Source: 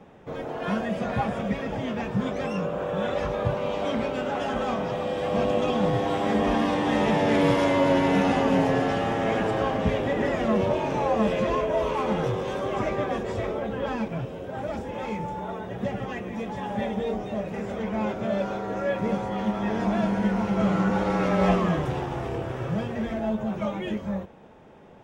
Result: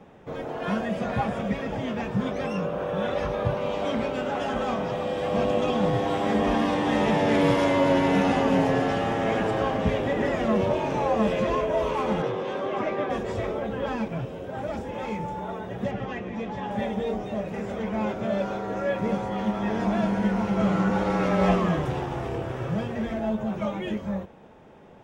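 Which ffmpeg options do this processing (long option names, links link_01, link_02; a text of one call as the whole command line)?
ffmpeg -i in.wav -filter_complex "[0:a]asettb=1/sr,asplit=3[link_01][link_02][link_03];[link_01]atrim=end=2.224[link_04];[link_02]atrim=start=2.22:end=3.61,asetpts=PTS-STARTPTS,afade=type=in:duration=0.004:curve=qsin,afade=type=out:start_time=1.386:duration=0.004:curve=qsin,bandreject=frequency=7300:width=6.6[link_05];[link_03]atrim=start=3.606[link_06];[link_04][link_05]acrossfade=duration=0.004:curve1=hsin:curve2=qsin[link_07];[link_07][link_06]acrossfade=duration=0.004:curve1=qsin:curve2=hsin,asettb=1/sr,asplit=3[link_08][link_09][link_10];[link_08]atrim=end=12.224[link_11];[link_09]atrim=start=12.22:end=13.1,asetpts=PTS-STARTPTS,afade=type=in:duration=0.004:curve=qsin,afade=type=out:start_time=0.876:duration=0.004:curve=qsin,acrossover=split=160 4700:gain=0.141 1 0.224[link_12][link_13][link_14];[link_12][link_13][link_14]amix=inputs=3:normalize=0[link_15];[link_10]atrim=start=13.096[link_16];[link_11][link_15]acrossfade=duration=0.004:curve1=hsin:curve2=qsin[link_17];[link_17][link_16]acrossfade=duration=0.004:curve1=qsin:curve2=hsin,asettb=1/sr,asplit=3[link_18][link_19][link_20];[link_18]atrim=end=15.914[link_21];[link_19]atrim=start=15.91:end=16.71,asetpts=PTS-STARTPTS,afade=type=in:duration=0.004:curve=qsin,afade=type=out:start_time=0.796:duration=0.004:curve=qsin,lowpass=5400[link_22];[link_20]atrim=start=16.706[link_23];[link_21][link_22]acrossfade=duration=0.004:curve1=hsin:curve2=qsin[link_24];[link_24][link_23]acrossfade=duration=0.004:curve1=qsin:curve2=hsin" out.wav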